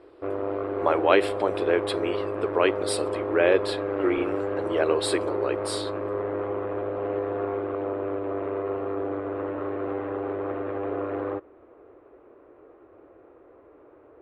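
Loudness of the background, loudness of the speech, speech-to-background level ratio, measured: -30.0 LUFS, -26.0 LUFS, 4.0 dB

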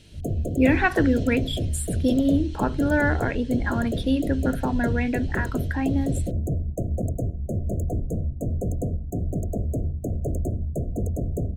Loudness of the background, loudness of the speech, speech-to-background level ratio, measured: -28.5 LUFS, -25.0 LUFS, 3.5 dB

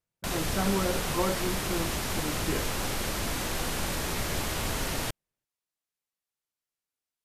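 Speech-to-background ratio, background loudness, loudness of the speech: -2.5 dB, -31.0 LUFS, -33.5 LUFS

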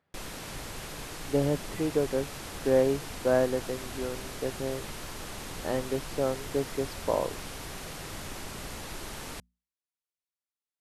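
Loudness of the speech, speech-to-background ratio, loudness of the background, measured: -30.5 LUFS, 9.0 dB, -39.5 LUFS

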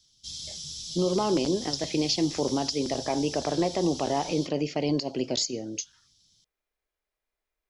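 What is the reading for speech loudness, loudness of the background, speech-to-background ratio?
-28.0 LUFS, -37.0 LUFS, 9.0 dB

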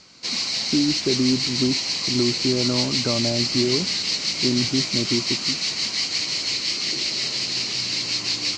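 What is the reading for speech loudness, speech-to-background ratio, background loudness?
-25.5 LUFS, -3.5 dB, -22.0 LUFS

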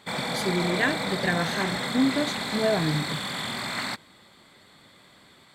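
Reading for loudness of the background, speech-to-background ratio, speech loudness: -29.5 LUFS, 2.0 dB, -27.5 LUFS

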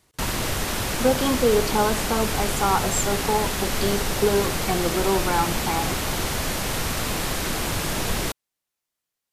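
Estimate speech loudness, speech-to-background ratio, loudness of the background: -24.5 LUFS, 1.0 dB, -25.5 LUFS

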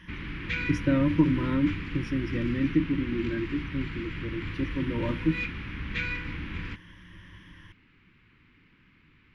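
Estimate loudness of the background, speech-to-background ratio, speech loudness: -35.5 LUFS, 6.5 dB, -29.0 LUFS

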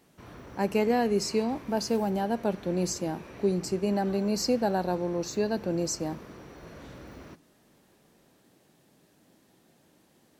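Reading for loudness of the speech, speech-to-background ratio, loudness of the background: -29.0 LUFS, 18.0 dB, -47.0 LUFS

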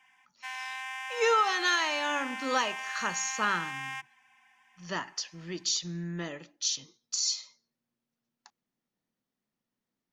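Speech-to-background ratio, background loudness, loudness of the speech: 6.5 dB, -37.0 LUFS, -30.5 LUFS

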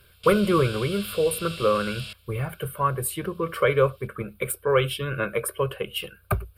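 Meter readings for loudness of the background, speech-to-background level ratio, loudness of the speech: -37.0 LUFS, 11.5 dB, -25.5 LUFS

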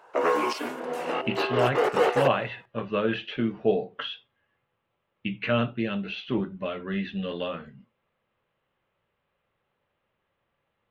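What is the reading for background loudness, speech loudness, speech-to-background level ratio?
-26.5 LUFS, -29.5 LUFS, -3.0 dB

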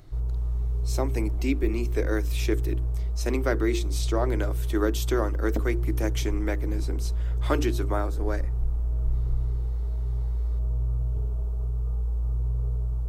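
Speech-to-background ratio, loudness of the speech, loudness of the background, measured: -1.0 dB, -30.5 LUFS, -29.5 LUFS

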